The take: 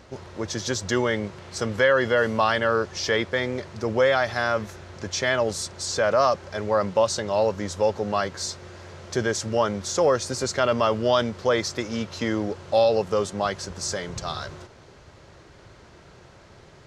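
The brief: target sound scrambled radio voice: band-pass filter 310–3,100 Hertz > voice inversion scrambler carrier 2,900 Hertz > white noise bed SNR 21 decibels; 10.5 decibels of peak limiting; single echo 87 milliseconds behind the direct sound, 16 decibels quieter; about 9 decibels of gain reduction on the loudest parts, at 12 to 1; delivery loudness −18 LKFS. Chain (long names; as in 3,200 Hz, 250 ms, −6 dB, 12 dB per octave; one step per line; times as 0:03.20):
downward compressor 12 to 1, threshold −24 dBFS
brickwall limiter −23 dBFS
band-pass filter 310–3,100 Hz
single-tap delay 87 ms −16 dB
voice inversion scrambler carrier 2,900 Hz
white noise bed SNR 21 dB
level +15.5 dB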